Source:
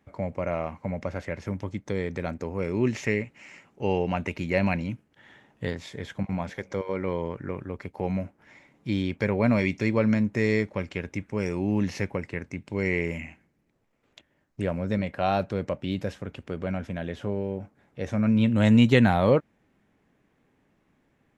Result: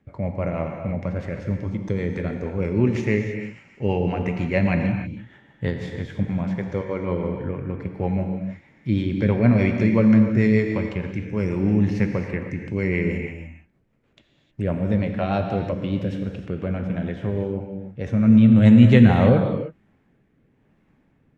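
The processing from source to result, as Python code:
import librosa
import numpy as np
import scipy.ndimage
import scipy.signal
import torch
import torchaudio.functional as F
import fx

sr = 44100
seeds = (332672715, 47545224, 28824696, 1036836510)

y = fx.bass_treble(x, sr, bass_db=5, treble_db=-8)
y = fx.rotary_switch(y, sr, hz=6.3, then_hz=1.0, switch_at_s=18.54)
y = fx.rev_gated(y, sr, seeds[0], gate_ms=340, shape='flat', drr_db=4.0)
y = y * 10.0 ** (3.0 / 20.0)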